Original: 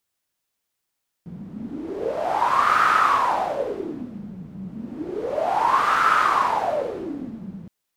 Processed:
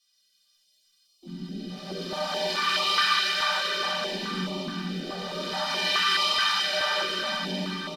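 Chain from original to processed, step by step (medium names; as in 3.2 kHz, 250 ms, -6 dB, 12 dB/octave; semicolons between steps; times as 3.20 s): low-pass 8.9 kHz 12 dB/octave; in parallel at -0.5 dB: compression 10:1, threshold -29 dBFS, peak gain reduction 15.5 dB; on the sum: comb 5.2 ms, depth 71%; on a send: echo that smears into a reverb 532 ms, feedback 43%, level -13 dB; on the sum: peak limiter -15.5 dBFS, peak gain reduction 11 dB; tilt shelf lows -7 dB; inharmonic resonator 180 Hz, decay 0.21 s, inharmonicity 0.03; de-hum 47.92 Hz, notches 8; harmony voices +4 st -9 dB, +7 st -7 dB, +12 st -8 dB; high-order bell 4 kHz +12.5 dB 1.1 oct; plate-style reverb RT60 4.5 s, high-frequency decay 0.9×, DRR -4 dB; step-sequenced notch 4.7 Hz 320–1600 Hz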